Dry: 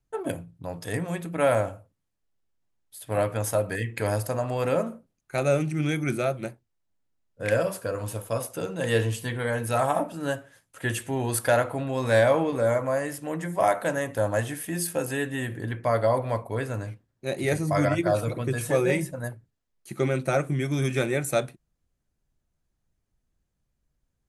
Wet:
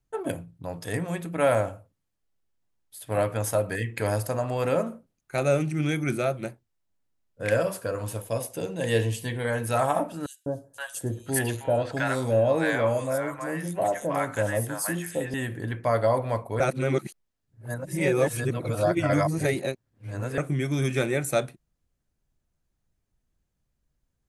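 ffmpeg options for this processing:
-filter_complex "[0:a]asettb=1/sr,asplit=3[a][b][c];[a]atrim=end=8.214[d];[b]atrim=start=8.21:end=9.45,asetpts=PTS-STARTPTS,afade=t=in:d=0.004:c=qsin,afade=t=out:st=1.236:d=0.004:c=qsin,equalizer=f=1.3k:t=o:w=0.42:g=-10.5[e];[c]atrim=start=9.446[f];[d][e]acrossfade=d=0.004:c1=hsin:c2=qsin[g];[g][f]acrossfade=d=0.004:c1=qsin:c2=hsin,asettb=1/sr,asplit=3[h][i][j];[h]atrim=end=10.264[k];[i]atrim=start=10.26:end=15.34,asetpts=PTS-STARTPTS,afade=t=in:d=0.004:c=qsin,afade=t=out:st=5.076:d=0.004:c=qsin,acrossover=split=820|4100[l][m][n];[l]adelay=200[o];[m]adelay=520[p];[o][p][n]amix=inputs=3:normalize=0,atrim=end_sample=224028[q];[j]atrim=start=15.336[r];[k][q]acrossfade=d=0.004:c1=hsin:c2=qsin[s];[s][r]acrossfade=d=0.004:c1=qsin:c2=hsin,asplit=3[t][u][v];[t]atrim=end=16.602[w];[u]atrim=start=16.598:end=20.382,asetpts=PTS-STARTPTS,areverse[x];[v]atrim=start=20.378[y];[w][x]acrossfade=d=0.004:c1=hsin:c2=hsin[z];[z][y]acrossfade=d=0.004:c1=hsin:c2=hsin"

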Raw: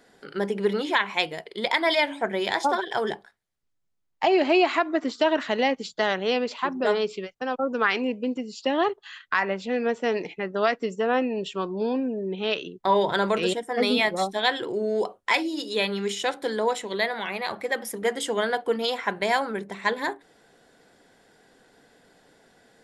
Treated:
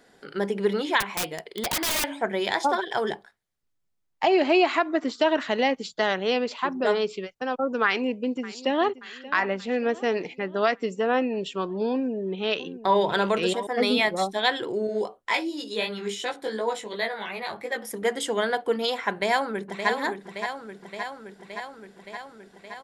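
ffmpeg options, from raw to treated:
-filter_complex "[0:a]asettb=1/sr,asplit=3[a][b][c];[a]atrim=end=1.004[d];[b]atrim=start=1:end=2.04,asetpts=PTS-STARTPTS,afade=t=in:d=0.004:c=qsin,afade=t=out:st=1.036:d=0.004:c=qsin,aeval=exprs='(mod(10.6*val(0)+1,2)-1)/10.6':c=same[e];[c]atrim=start=2.036[f];[d][e]acrossfade=d=0.004:c1=hsin:c2=qsin[g];[g][f]acrossfade=d=0.004:c1=qsin:c2=hsin,asplit=2[h][i];[i]afade=t=in:st=7.85:d=0.01,afade=t=out:st=9:d=0.01,aecho=0:1:580|1160|1740|2320|2900|3480:0.133352|0.0800113|0.0480068|0.0288041|0.0172824|0.0103695[j];[h][j]amix=inputs=2:normalize=0,asettb=1/sr,asplit=3[k][l][m];[k]atrim=end=11.914[n];[l]atrim=start=11.91:end=13.67,asetpts=PTS-STARTPTS,afade=t=in:d=0.004:c=qsin,afade=t=out:st=1.756:d=0.004:c=qsin,aecho=1:1:687:0.2,atrim=end_sample=77616[o];[m]atrim=start=13.666[p];[n][o]acrossfade=d=0.004:c1=hsin:c2=qsin[q];[q][p]acrossfade=d=0.004:c1=qsin:c2=hsin,asettb=1/sr,asplit=3[r][s][t];[r]atrim=end=14.874[u];[s]atrim=start=14.87:end=17.91,asetpts=PTS-STARTPTS,afade=t=in:d=0.004:c=qsin,afade=t=out:st=3.036:d=0.004:c=qsin,flanger=delay=16.5:depth=3.1:speed=2.8[v];[t]atrim=start=17.906[w];[u][v]acrossfade=d=0.004:c1=hsin:c2=qsin[x];[x][w]acrossfade=d=0.004:c1=qsin:c2=hsin,asplit=2[y][z];[z]afade=t=in:st=19.11:d=0.01,afade=t=out:st=19.89:d=0.01,aecho=0:1:570|1140|1710|2280|2850|3420|3990|4560|5130|5700|6270|6840:0.421697|0.316272|0.237204|0.177903|0.133427|0.100071|0.0750529|0.0562897|0.0422173|0.0316629|0.0237472|0.0178104[aa];[y][aa]amix=inputs=2:normalize=0"

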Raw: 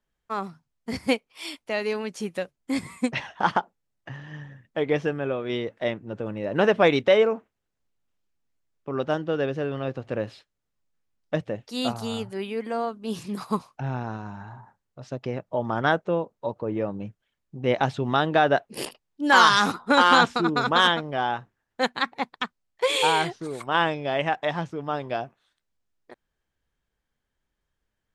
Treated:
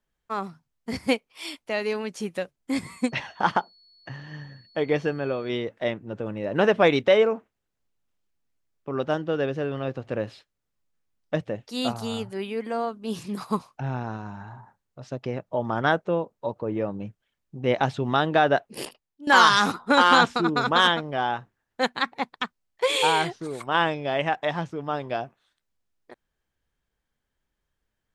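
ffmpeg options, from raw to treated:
-filter_complex "[0:a]asettb=1/sr,asplit=3[a][b][c];[a]atrim=end=2.844[d];[b]atrim=start=2.84:end=5.49,asetpts=PTS-STARTPTS,afade=t=in:d=0.004:c=qsin,afade=t=out:st=2.646:d=0.004:c=qsin,aeval=exprs='val(0)+0.00178*sin(2*PI*4400*n/s)':c=same[e];[c]atrim=start=5.486[f];[d][e]acrossfade=d=0.004:c1=hsin:c2=qsin[g];[g][f]acrossfade=d=0.004:c1=qsin:c2=hsin,asplit=2[h][i];[h]atrim=end=19.27,asetpts=PTS-STARTPTS,afade=t=out:st=18.42:d=0.85:c=qsin:silence=0.149624[j];[i]atrim=start=19.27,asetpts=PTS-STARTPTS,afade=t=in:d=0.004:c=hsin:silence=0.149624[k];[j][k]concat=n=2:v=0:a=1"

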